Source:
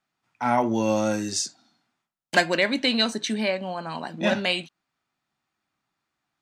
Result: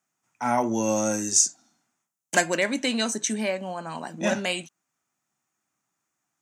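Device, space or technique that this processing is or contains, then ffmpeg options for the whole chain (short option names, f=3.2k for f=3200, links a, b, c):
budget condenser microphone: -af "highpass=100,highshelf=f=5.3k:t=q:w=3:g=7,volume=-1.5dB"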